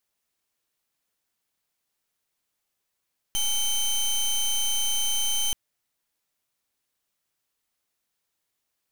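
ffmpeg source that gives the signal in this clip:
ffmpeg -f lavfi -i "aevalsrc='0.0596*(2*lt(mod(3090*t,1),0.18)-1)':duration=2.18:sample_rate=44100" out.wav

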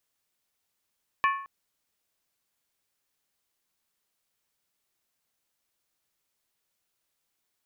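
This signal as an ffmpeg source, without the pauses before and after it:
ffmpeg -f lavfi -i "aevalsrc='0.112*pow(10,-3*t/0.56)*sin(2*PI*1100*t)+0.0631*pow(10,-3*t/0.444)*sin(2*PI*1753.4*t)+0.0355*pow(10,-3*t/0.383)*sin(2*PI*2349.6*t)+0.02*pow(10,-3*t/0.37)*sin(2*PI*2525.6*t)+0.0112*pow(10,-3*t/0.344)*sin(2*PI*2918.3*t)':duration=0.22:sample_rate=44100" out.wav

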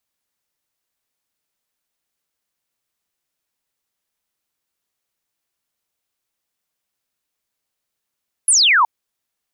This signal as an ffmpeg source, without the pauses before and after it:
ffmpeg -f lavfi -i "aevalsrc='0.316*clip(t/0.002,0,1)*clip((0.37-t)/0.002,0,1)*sin(2*PI*11000*0.37/log(870/11000)*(exp(log(870/11000)*t/0.37)-1))':duration=0.37:sample_rate=44100" out.wav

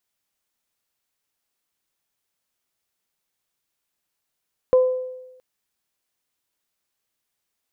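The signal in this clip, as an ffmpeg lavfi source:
ffmpeg -f lavfi -i "aevalsrc='0.316*pow(10,-3*t/1.03)*sin(2*PI*510*t)+0.0422*pow(10,-3*t/0.58)*sin(2*PI*1020*t)':duration=0.67:sample_rate=44100" out.wav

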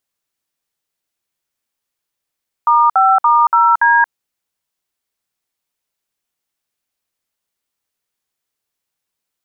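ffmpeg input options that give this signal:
ffmpeg -f lavfi -i "aevalsrc='0.299*clip(min(mod(t,0.286),0.228-mod(t,0.286))/0.002,0,1)*(eq(floor(t/0.286),0)*(sin(2*PI*941*mod(t,0.286))+sin(2*PI*1209*mod(t,0.286)))+eq(floor(t/0.286),1)*(sin(2*PI*770*mod(t,0.286))+sin(2*PI*1336*mod(t,0.286)))+eq(floor(t/0.286),2)*(sin(2*PI*941*mod(t,0.286))+sin(2*PI*1209*mod(t,0.286)))+eq(floor(t/0.286),3)*(sin(2*PI*941*mod(t,0.286))+sin(2*PI*1336*mod(t,0.286)))+eq(floor(t/0.286),4)*(sin(2*PI*941*mod(t,0.286))+sin(2*PI*1633*mod(t,0.286))))':duration=1.43:sample_rate=44100" out.wav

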